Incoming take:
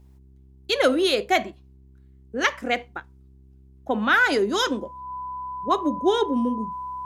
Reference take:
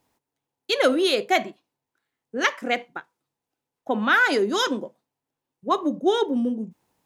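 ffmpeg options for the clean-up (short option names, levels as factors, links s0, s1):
-af "bandreject=f=66:t=h:w=4,bandreject=f=132:t=h:w=4,bandreject=f=198:t=h:w=4,bandreject=f=264:t=h:w=4,bandreject=f=330:t=h:w=4,bandreject=f=396:t=h:w=4,bandreject=f=1000:w=30"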